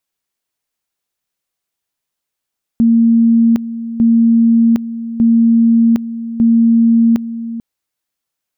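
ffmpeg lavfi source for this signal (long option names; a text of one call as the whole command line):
ffmpeg -f lavfi -i "aevalsrc='pow(10,(-6.5-13.5*gte(mod(t,1.2),0.76))/20)*sin(2*PI*230*t)':duration=4.8:sample_rate=44100" out.wav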